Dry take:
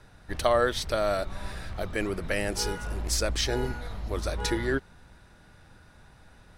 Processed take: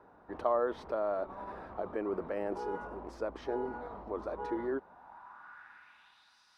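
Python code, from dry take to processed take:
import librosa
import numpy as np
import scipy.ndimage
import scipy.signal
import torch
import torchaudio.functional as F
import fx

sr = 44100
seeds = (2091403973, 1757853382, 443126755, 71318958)

p1 = fx.graphic_eq_10(x, sr, hz=(125, 250, 500, 1000, 2000, 4000, 8000), db=(-7, 3, -10, 11, -3, -4, -7))
p2 = fx.over_compress(p1, sr, threshold_db=-34.0, ratio=-0.5)
p3 = p1 + F.gain(torch.from_numpy(p2), -2.0).numpy()
p4 = fx.filter_sweep_bandpass(p3, sr, from_hz=470.0, to_hz=5000.0, start_s=4.77, end_s=6.39, q=2.8)
y = F.gain(torch.from_numpy(p4), 2.0).numpy()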